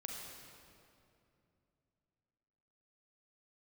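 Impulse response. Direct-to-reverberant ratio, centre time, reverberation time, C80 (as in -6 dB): -0.5 dB, 0.11 s, 2.7 s, 1.5 dB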